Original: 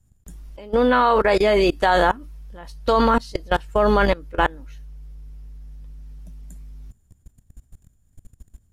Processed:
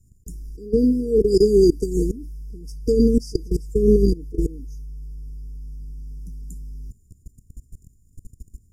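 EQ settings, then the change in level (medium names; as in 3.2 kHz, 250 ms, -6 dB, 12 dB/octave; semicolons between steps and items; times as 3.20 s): brick-wall FIR band-stop 470–4700 Hz; +4.5 dB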